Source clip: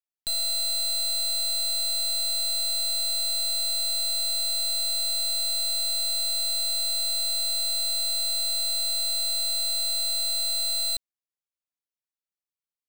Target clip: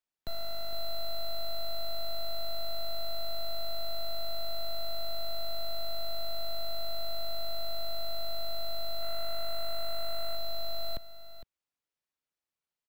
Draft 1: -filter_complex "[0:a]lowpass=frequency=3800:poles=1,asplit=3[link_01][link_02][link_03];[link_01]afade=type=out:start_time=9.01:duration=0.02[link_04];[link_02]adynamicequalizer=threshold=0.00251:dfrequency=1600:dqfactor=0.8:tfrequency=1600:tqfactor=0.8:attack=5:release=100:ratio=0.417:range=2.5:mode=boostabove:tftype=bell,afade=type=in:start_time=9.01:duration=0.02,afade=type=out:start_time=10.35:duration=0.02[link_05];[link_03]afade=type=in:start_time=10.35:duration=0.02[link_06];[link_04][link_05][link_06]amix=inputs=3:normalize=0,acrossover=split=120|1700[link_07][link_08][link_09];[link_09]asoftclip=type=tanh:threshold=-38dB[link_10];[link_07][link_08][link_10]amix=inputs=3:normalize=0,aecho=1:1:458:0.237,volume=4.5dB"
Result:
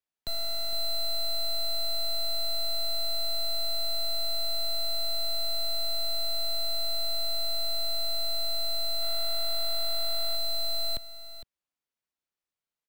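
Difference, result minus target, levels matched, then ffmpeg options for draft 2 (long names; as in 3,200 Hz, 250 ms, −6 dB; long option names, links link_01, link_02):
soft clipping: distortion −4 dB
-filter_complex "[0:a]lowpass=frequency=3800:poles=1,asplit=3[link_01][link_02][link_03];[link_01]afade=type=out:start_time=9.01:duration=0.02[link_04];[link_02]adynamicequalizer=threshold=0.00251:dfrequency=1600:dqfactor=0.8:tfrequency=1600:tqfactor=0.8:attack=5:release=100:ratio=0.417:range=2.5:mode=boostabove:tftype=bell,afade=type=in:start_time=9.01:duration=0.02,afade=type=out:start_time=10.35:duration=0.02[link_05];[link_03]afade=type=in:start_time=10.35:duration=0.02[link_06];[link_04][link_05][link_06]amix=inputs=3:normalize=0,acrossover=split=120|1700[link_07][link_08][link_09];[link_09]asoftclip=type=tanh:threshold=-49.5dB[link_10];[link_07][link_08][link_10]amix=inputs=3:normalize=0,aecho=1:1:458:0.237,volume=4.5dB"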